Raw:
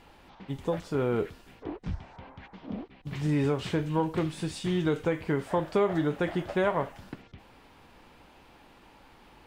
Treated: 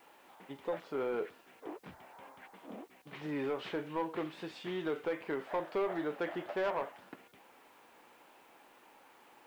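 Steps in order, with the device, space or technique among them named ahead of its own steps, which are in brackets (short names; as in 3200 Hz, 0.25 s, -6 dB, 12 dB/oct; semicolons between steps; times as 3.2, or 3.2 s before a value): tape answering machine (BPF 380–3000 Hz; soft clip -23.5 dBFS, distortion -15 dB; wow and flutter; white noise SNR 32 dB); gain -3 dB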